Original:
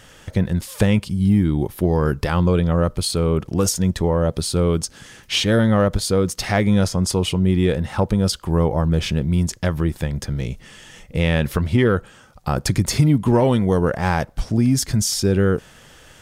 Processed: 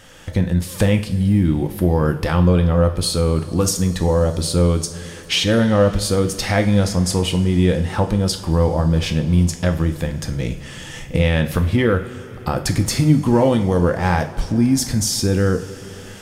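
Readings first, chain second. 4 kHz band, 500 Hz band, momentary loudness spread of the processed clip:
+2.0 dB, +1.5 dB, 9 LU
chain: recorder AGC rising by 8.8 dB/s; two-slope reverb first 0.44 s, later 5 s, from -19 dB, DRR 5.5 dB

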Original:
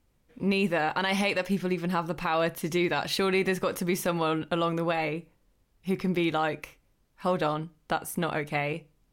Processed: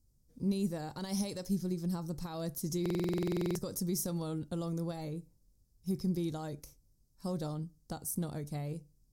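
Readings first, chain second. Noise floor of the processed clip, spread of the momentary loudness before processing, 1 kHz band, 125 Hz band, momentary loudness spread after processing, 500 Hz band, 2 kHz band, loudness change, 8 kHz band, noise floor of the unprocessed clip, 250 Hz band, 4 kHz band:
-70 dBFS, 7 LU, -18.0 dB, -2.5 dB, 10 LU, -11.0 dB, -23.5 dB, -8.5 dB, -1.0 dB, -69 dBFS, -5.0 dB, -13.0 dB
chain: FFT filter 120 Hz 0 dB, 2.7 kHz -28 dB, 5.1 kHz 0 dB; buffer glitch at 2.81 s, samples 2048, times 15

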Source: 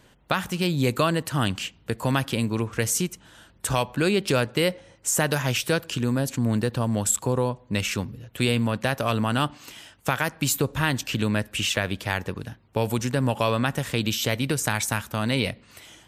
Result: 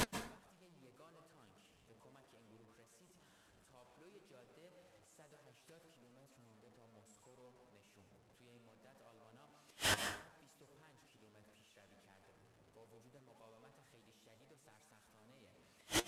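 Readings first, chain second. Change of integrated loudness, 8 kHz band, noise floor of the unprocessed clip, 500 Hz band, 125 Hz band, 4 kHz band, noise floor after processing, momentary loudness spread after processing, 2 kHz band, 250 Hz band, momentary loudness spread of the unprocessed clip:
-14.5 dB, -22.0 dB, -56 dBFS, -28.0 dB, -33.0 dB, -19.0 dB, -70 dBFS, 16 LU, -21.0 dB, -29.5 dB, 7 LU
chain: one-bit delta coder 64 kbps, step -19.5 dBFS; dynamic bell 570 Hz, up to +7 dB, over -36 dBFS, Q 0.73; inverted gate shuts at -20 dBFS, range -38 dB; flange 0.67 Hz, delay 3.8 ms, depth 8.7 ms, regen +62%; plate-style reverb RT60 0.52 s, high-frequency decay 0.7×, pre-delay 120 ms, DRR 5.5 dB; trim -3.5 dB

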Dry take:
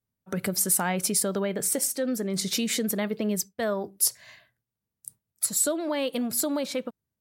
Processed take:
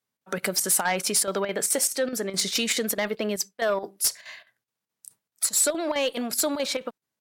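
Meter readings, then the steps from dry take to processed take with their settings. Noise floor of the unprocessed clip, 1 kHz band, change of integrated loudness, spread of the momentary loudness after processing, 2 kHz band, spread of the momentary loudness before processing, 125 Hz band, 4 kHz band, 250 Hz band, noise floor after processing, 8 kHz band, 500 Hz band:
under -85 dBFS, +3.5 dB, +1.5 dB, 7 LU, +5.5 dB, 10 LU, -5.5 dB, +5.0 dB, -3.5 dB, under -85 dBFS, +2.0 dB, +2.5 dB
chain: frequency weighting A; square tremolo 4.7 Hz, depth 65%, duty 80%; Chebyshev shaper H 5 -12 dB, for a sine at -12.5 dBFS

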